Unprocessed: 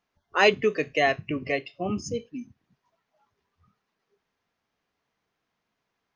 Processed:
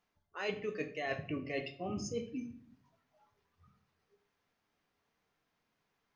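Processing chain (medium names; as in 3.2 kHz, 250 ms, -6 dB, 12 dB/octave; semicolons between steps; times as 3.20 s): reverse; compression 8:1, threshold -33 dBFS, peak gain reduction 18.5 dB; reverse; simulated room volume 75 m³, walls mixed, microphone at 0.36 m; trim -2.5 dB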